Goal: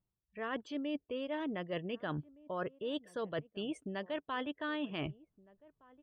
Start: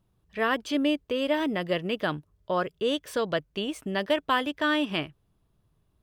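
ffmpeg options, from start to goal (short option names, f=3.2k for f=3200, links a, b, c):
-filter_complex "[0:a]afftdn=nr=24:nf=-43,highshelf=f=3k:g=-6.5,areverse,acompressor=threshold=-46dB:ratio=6,areverse,asplit=2[a][b];[b]adelay=1516,volume=-22dB,highshelf=f=4k:g=-34.1[c];[a][c]amix=inputs=2:normalize=0,volume=8.5dB"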